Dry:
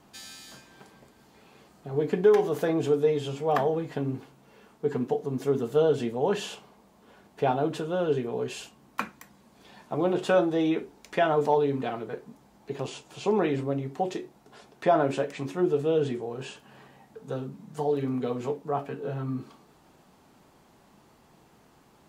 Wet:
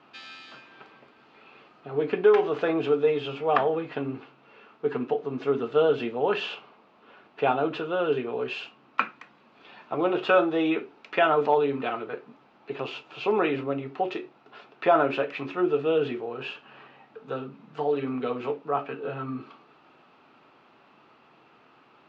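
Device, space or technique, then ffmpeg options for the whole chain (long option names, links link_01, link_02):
kitchen radio: -af "highpass=180,equalizer=frequency=190:width_type=q:width=4:gain=-8,equalizer=frequency=1300:width_type=q:width=4:gain=9,equalizer=frequency=2600:width_type=q:width=4:gain=9,lowpass=frequency=4100:width=0.5412,lowpass=frequency=4100:width=1.3066,volume=1dB"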